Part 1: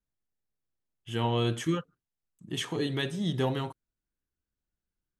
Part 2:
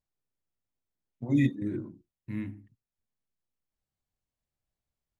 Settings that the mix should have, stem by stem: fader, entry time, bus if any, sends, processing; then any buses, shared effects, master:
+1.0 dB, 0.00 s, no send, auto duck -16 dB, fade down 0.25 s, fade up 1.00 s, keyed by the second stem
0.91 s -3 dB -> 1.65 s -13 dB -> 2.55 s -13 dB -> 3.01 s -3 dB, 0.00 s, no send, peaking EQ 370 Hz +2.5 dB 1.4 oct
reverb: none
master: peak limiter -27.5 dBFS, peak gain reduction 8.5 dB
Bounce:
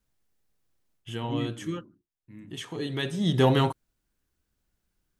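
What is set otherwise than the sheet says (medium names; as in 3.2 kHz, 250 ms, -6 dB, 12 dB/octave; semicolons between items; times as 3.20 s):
stem 1 +1.0 dB -> +11.0 dB; master: missing peak limiter -27.5 dBFS, peak gain reduction 8.5 dB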